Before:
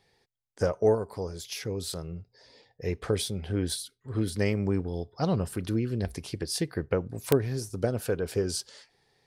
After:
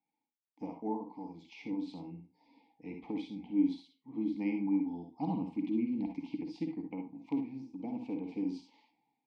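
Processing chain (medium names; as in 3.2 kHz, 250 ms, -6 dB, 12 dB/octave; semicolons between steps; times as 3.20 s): level rider gain up to 15 dB; vowel filter u; distance through air 170 m; static phaser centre 380 Hz, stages 6; reverberation RT60 0.25 s, pre-delay 47 ms, DRR 4 dB; trim -3.5 dB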